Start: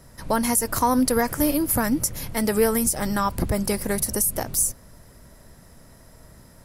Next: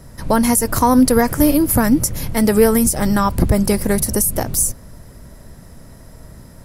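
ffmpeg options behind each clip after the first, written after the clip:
-af "lowshelf=f=430:g=6,volume=1.68"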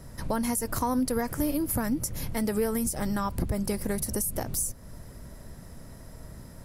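-af "acompressor=threshold=0.0447:ratio=2,volume=0.562"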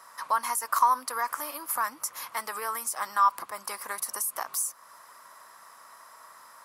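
-af "highpass=f=1100:t=q:w=6.2"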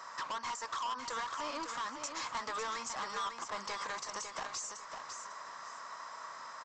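-af "acompressor=threshold=0.0224:ratio=4,aresample=16000,asoftclip=type=hard:threshold=0.0106,aresample=44100,aecho=1:1:551|1102|1653:0.447|0.116|0.0302,volume=1.58"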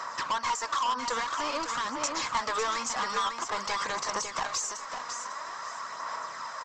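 -af "aphaser=in_gain=1:out_gain=1:delay=4.2:decay=0.35:speed=0.49:type=sinusoidal,volume=2.51"

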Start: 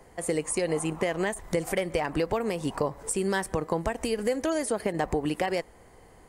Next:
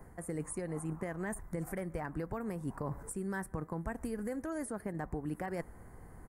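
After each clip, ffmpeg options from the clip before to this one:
-af "firequalizer=gain_entry='entry(160,0);entry(480,-11);entry(1500,-4);entry(2900,-24);entry(11000,-5)':delay=0.05:min_phase=1,areverse,acompressor=threshold=0.01:ratio=6,areverse,volume=1.78"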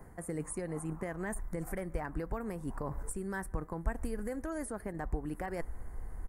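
-af "asubboost=boost=7:cutoff=53,volume=1.12"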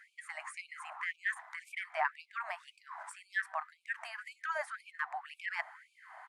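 -af "lowpass=f=3200:t=q:w=1.7,afftfilt=real='re*gte(b*sr/1024,600*pow(2300/600,0.5+0.5*sin(2*PI*1.9*pts/sr)))':imag='im*gte(b*sr/1024,600*pow(2300/600,0.5+0.5*sin(2*PI*1.9*pts/sr)))':win_size=1024:overlap=0.75,volume=2.99"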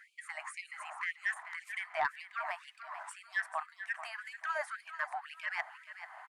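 -filter_complex "[0:a]asplit=2[s0][s1];[s1]aecho=0:1:438|876|1314:0.251|0.0754|0.0226[s2];[s0][s2]amix=inputs=2:normalize=0,asoftclip=type=tanh:threshold=0.0891,volume=1.12"

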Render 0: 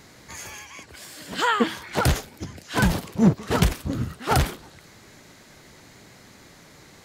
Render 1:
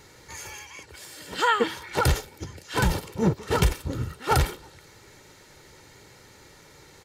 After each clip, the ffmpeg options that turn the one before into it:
-af "aecho=1:1:2.2:0.52,volume=0.75"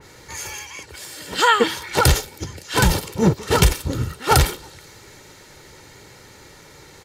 -af "adynamicequalizer=threshold=0.00708:dfrequency=2900:dqfactor=0.7:tfrequency=2900:tqfactor=0.7:attack=5:release=100:ratio=0.375:range=2.5:mode=boostabove:tftype=highshelf,volume=2"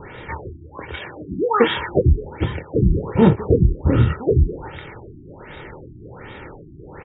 -filter_complex "[0:a]acompressor=threshold=0.112:ratio=5,asplit=2[s0][s1];[s1]adelay=26,volume=0.376[s2];[s0][s2]amix=inputs=2:normalize=0,afftfilt=real='re*lt(b*sr/1024,360*pow(3900/360,0.5+0.5*sin(2*PI*1.3*pts/sr)))':imag='im*lt(b*sr/1024,360*pow(3900/360,0.5+0.5*sin(2*PI*1.3*pts/sr)))':win_size=1024:overlap=0.75,volume=2.82"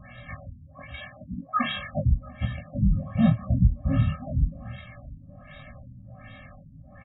-filter_complex "[0:a]asplit=2[s0][s1];[s1]adelay=693,lowpass=f=1100:p=1,volume=0.0841,asplit=2[s2][s3];[s3]adelay=693,lowpass=f=1100:p=1,volume=0.34[s4];[s0][s2][s4]amix=inputs=3:normalize=0,flanger=delay=16:depth=4.4:speed=0.84,afftfilt=real='re*eq(mod(floor(b*sr/1024/260),2),0)':imag='im*eq(mod(floor(b*sr/1024/260),2),0)':win_size=1024:overlap=0.75,volume=0.794"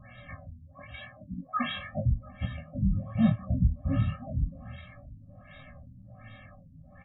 -af "flanger=delay=8.6:depth=4:regen=63:speed=0.95:shape=triangular"

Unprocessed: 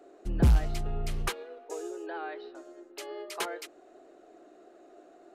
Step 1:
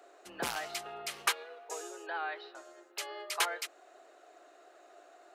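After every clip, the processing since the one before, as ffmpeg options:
-af "highpass=860,volume=1.78"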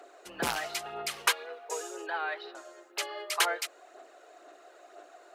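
-af "aphaser=in_gain=1:out_gain=1:delay=2.1:decay=0.36:speed=2:type=sinusoidal,volume=1.5"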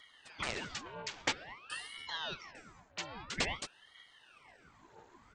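-af "aresample=16000,aresample=44100,afreqshift=-28,aeval=exprs='val(0)*sin(2*PI*1400*n/s+1400*0.85/0.5*sin(2*PI*0.5*n/s))':c=same,volume=0.631"

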